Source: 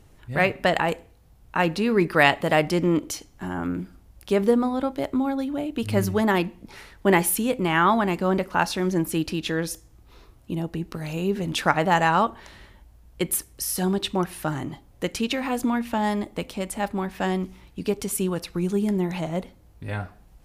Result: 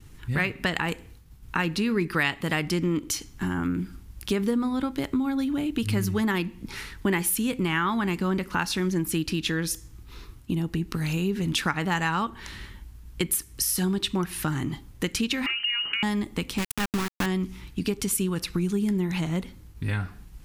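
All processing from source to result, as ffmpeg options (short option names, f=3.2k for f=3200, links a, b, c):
-filter_complex "[0:a]asettb=1/sr,asplit=3[a][b][c];[a]atrim=end=15.464[d];[b]atrim=start=15.46:end=16.03,asetpts=PTS-STARTPTS,afade=t=in:d=0.004:c=qsin,afade=t=out:st=0.566:d=0.004:c=qsin,lowpass=f=2.6k:t=q:w=0.5098,lowpass=f=2.6k:t=q:w=0.6013,lowpass=f=2.6k:t=q:w=0.9,lowpass=f=2.6k:t=q:w=2.563,afreqshift=-3100,acompressor=threshold=-27dB:ratio=6:attack=3.2:release=140:knee=1:detection=peak[e];[c]atrim=start=16.026[f];[d][e]acrossfade=d=0.004:c1=hsin:c2=qsin[g];[g][f]acrossfade=d=0.004:c1=qsin:c2=hsin,asettb=1/sr,asplit=3[h][i][j];[h]atrim=end=16.584[k];[i]atrim=start=16.58:end=17.26,asetpts=PTS-STARTPTS,afade=t=in:d=0.004:c=qsin,afade=t=out:st=0.676:d=0.004:c=qsin,lowshelf=f=200:g=6.5,aeval=exprs='val(0)*gte(abs(val(0)),0.0668)':c=same[l];[j]atrim=start=17.256[m];[k][l]acrossfade=d=0.004:c1=hsin:c2=qsin[n];[n][m]acrossfade=d=0.004:c1=qsin:c2=hsin,agate=range=-33dB:threshold=-50dB:ratio=3:detection=peak,equalizer=f=630:w=1.5:g=-15,acompressor=threshold=-33dB:ratio=3,volume=8dB"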